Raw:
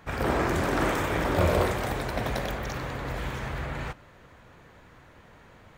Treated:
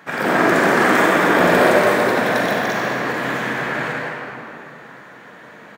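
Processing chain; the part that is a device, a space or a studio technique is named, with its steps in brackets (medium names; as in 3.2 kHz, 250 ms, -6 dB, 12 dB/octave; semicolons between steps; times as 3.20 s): stadium PA (high-pass 170 Hz 24 dB/octave; peaking EQ 1.7 kHz +6.5 dB 0.48 oct; loudspeakers at several distances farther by 56 m -11 dB, 75 m -11 dB; reverberation RT60 2.8 s, pre-delay 38 ms, DRR -3 dB); trim +6 dB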